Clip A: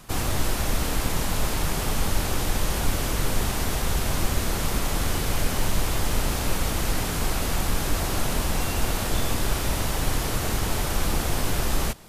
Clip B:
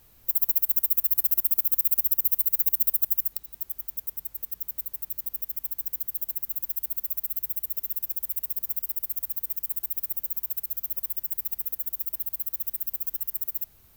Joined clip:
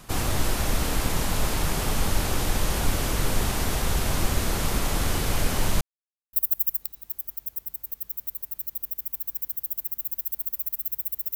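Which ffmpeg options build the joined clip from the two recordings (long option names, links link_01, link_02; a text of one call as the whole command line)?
ffmpeg -i cue0.wav -i cue1.wav -filter_complex "[0:a]apad=whole_dur=11.35,atrim=end=11.35,asplit=2[link_01][link_02];[link_01]atrim=end=5.81,asetpts=PTS-STARTPTS,afade=type=out:start_time=5.806:duration=0.004:curve=hsin[link_03];[link_02]atrim=start=5.81:end=6.33,asetpts=PTS-STARTPTS,volume=0[link_04];[1:a]atrim=start=2.84:end=7.86,asetpts=PTS-STARTPTS,afade=type=in:duration=0.004:curve=hsin[link_05];[link_03][link_04][link_05]concat=n=3:v=0:a=1" out.wav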